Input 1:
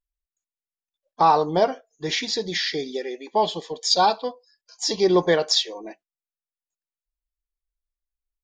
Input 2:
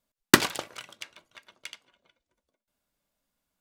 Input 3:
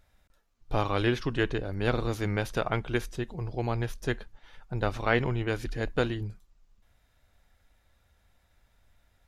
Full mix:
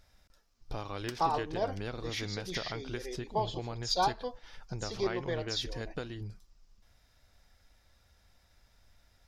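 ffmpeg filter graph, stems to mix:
ffmpeg -i stem1.wav -i stem2.wav -i stem3.wav -filter_complex "[0:a]volume=-9.5dB[link_01];[1:a]adelay=750,volume=-13.5dB[link_02];[2:a]volume=0.5dB,asplit=2[link_03][link_04];[link_04]apad=whole_len=371832[link_05];[link_01][link_05]sidechaincompress=threshold=-34dB:ratio=4:attack=29:release=112[link_06];[link_02][link_03]amix=inputs=2:normalize=0,equalizer=frequency=5200:width=2.5:gain=11,acompressor=threshold=-36dB:ratio=5,volume=0dB[link_07];[link_06][link_07]amix=inputs=2:normalize=0" out.wav

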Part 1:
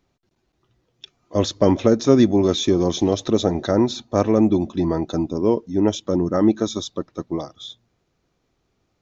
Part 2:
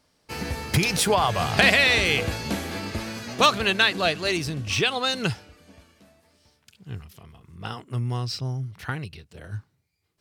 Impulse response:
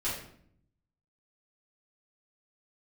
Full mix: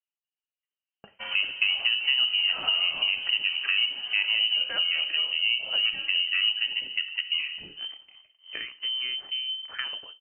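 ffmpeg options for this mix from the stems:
-filter_complex "[0:a]highpass=200,volume=2.5dB,asplit=3[link_01][link_02][link_03];[link_02]volume=-12dB[link_04];[1:a]adelay=900,volume=-2.5dB,asplit=2[link_05][link_06];[link_06]volume=-19.5dB[link_07];[link_03]apad=whole_len=489763[link_08];[link_05][link_08]sidechaincompress=threshold=-28dB:ratio=8:attack=7.6:release=278[link_09];[2:a]atrim=start_sample=2205[link_10];[link_04][link_07]amix=inputs=2:normalize=0[link_11];[link_11][link_10]afir=irnorm=-1:irlink=0[link_12];[link_01][link_09][link_12]amix=inputs=3:normalize=0,agate=range=-33dB:threshold=-42dB:ratio=3:detection=peak,lowpass=frequency=2700:width_type=q:width=0.5098,lowpass=frequency=2700:width_type=q:width=0.6013,lowpass=frequency=2700:width_type=q:width=0.9,lowpass=frequency=2700:width_type=q:width=2.563,afreqshift=-3200,acompressor=threshold=-26dB:ratio=3"

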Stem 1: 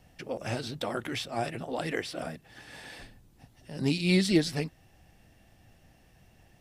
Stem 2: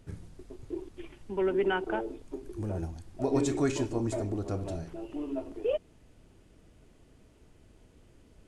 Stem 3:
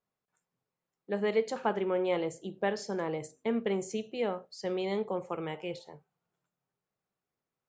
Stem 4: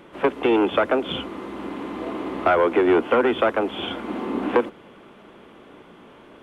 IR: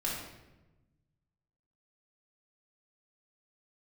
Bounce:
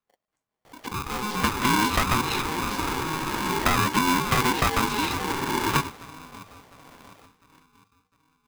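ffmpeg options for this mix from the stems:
-filter_complex "[0:a]equalizer=frequency=380:width_type=o:width=2.1:gain=10.5,acompressor=threshold=-23dB:ratio=6,adelay=650,volume=1dB[link_01];[1:a]volume=-9dB[link_02];[2:a]equalizer=frequency=400:width_type=o:width=2:gain=10,volume=-6dB,asplit=2[link_03][link_04];[link_04]volume=-10.5dB[link_05];[3:a]highpass=170,adelay=1200,volume=0dB[link_06];[link_02][link_06]amix=inputs=2:normalize=0,agate=range=-38dB:threshold=-44dB:ratio=16:detection=peak,acompressor=threshold=-19dB:ratio=6,volume=0dB[link_07];[link_01][link_03]amix=inputs=2:normalize=0,alimiter=limit=-22.5dB:level=0:latency=1:release=10,volume=0dB[link_08];[link_05]aecho=0:1:704|1408|2112|2816|3520|4224:1|0.4|0.16|0.064|0.0256|0.0102[link_09];[link_07][link_08][link_09]amix=inputs=3:normalize=0,aeval=exprs='val(0)*sgn(sin(2*PI*630*n/s))':channel_layout=same"

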